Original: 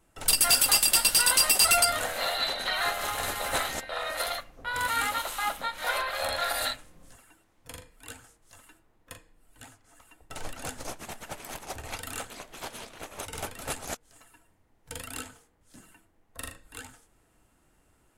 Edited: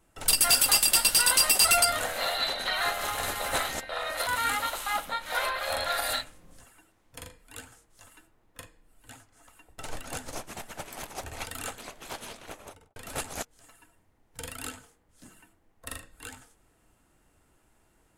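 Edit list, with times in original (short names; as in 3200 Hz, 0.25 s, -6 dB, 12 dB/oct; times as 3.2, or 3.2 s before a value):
4.27–4.79 cut
12.95–13.48 studio fade out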